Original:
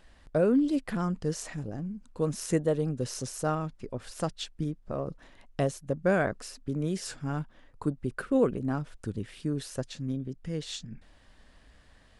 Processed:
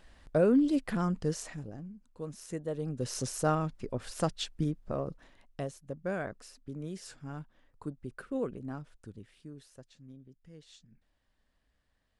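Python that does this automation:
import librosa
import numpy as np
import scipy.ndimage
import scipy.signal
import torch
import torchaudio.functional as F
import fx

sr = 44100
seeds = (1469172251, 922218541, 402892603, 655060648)

y = fx.gain(x, sr, db=fx.line((1.25, -0.5), (2.06, -11.5), (2.57, -11.5), (3.2, 1.0), (4.83, 1.0), (5.65, -9.5), (8.74, -9.5), (9.74, -18.5)))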